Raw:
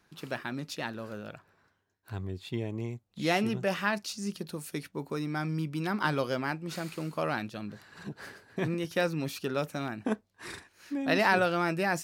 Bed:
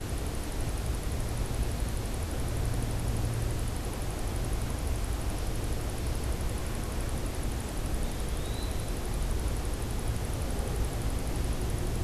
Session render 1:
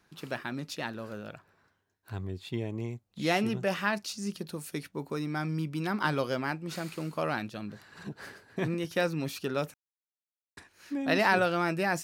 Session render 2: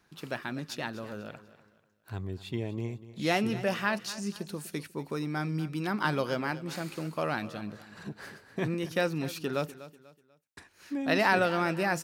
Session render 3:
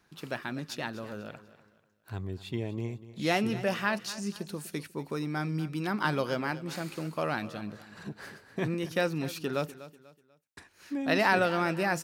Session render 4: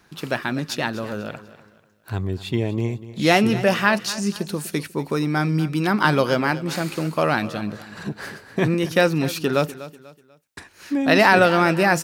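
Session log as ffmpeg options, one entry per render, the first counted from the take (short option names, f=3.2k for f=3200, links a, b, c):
-filter_complex "[0:a]asplit=3[a][b][c];[a]atrim=end=9.74,asetpts=PTS-STARTPTS,afade=t=out:st=9.736:d=0.004:c=hsin[d];[b]atrim=start=9.74:end=10.57,asetpts=PTS-STARTPTS,volume=0[e];[c]atrim=start=10.57,asetpts=PTS-STARTPTS,afade=t=in:d=0.004:c=hsin[f];[d][e][f]concat=n=3:v=0:a=1"
-af "aecho=1:1:245|490|735:0.158|0.0555|0.0194"
-af anull
-af "volume=11dB,alimiter=limit=-2dB:level=0:latency=1"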